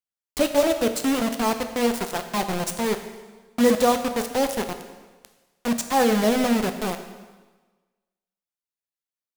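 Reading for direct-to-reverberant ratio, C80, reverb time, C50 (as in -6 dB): 7.0 dB, 10.5 dB, 1.3 s, 9.5 dB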